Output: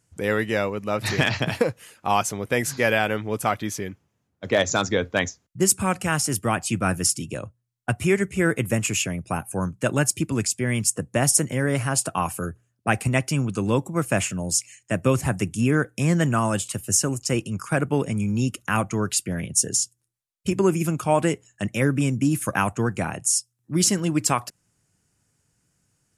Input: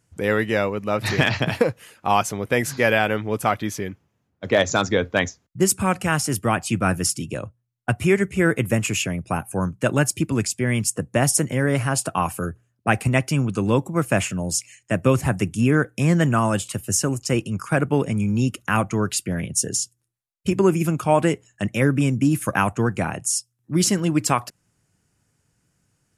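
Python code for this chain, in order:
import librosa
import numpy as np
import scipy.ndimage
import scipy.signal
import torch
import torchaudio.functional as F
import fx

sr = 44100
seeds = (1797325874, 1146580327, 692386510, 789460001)

y = fx.peak_eq(x, sr, hz=8000.0, db=4.5, octaves=1.5)
y = y * 10.0 ** (-2.5 / 20.0)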